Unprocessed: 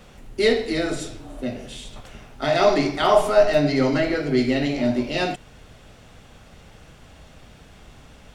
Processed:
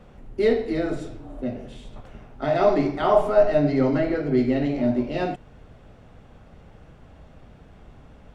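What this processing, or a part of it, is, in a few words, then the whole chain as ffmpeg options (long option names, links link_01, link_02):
through cloth: -af "highshelf=frequency=2300:gain=-17.5"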